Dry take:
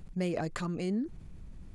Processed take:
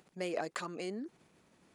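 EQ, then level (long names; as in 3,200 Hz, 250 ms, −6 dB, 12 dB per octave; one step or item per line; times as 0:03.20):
high-pass filter 410 Hz 12 dB per octave
0.0 dB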